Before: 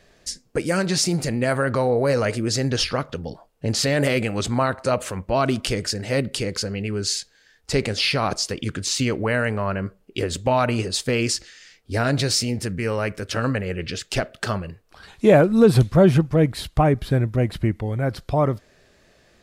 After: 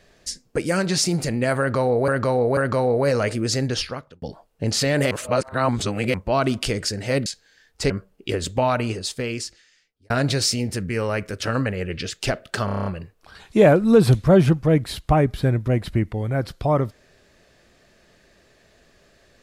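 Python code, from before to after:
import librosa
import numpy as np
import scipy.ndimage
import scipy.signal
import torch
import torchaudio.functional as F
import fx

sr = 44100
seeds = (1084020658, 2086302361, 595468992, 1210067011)

y = fx.edit(x, sr, fx.repeat(start_s=1.59, length_s=0.49, count=3),
    fx.fade_out_span(start_s=2.61, length_s=0.63),
    fx.reverse_span(start_s=4.13, length_s=1.03),
    fx.cut(start_s=6.28, length_s=0.87),
    fx.cut(start_s=7.79, length_s=2.0),
    fx.fade_out_span(start_s=10.4, length_s=1.59),
    fx.stutter(start_s=14.54, slice_s=0.03, count=8), tone=tone)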